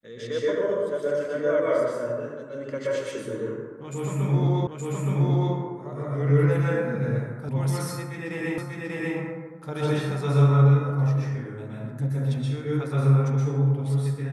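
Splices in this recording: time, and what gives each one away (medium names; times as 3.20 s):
4.67 s: repeat of the last 0.87 s
7.49 s: sound stops dead
8.58 s: repeat of the last 0.59 s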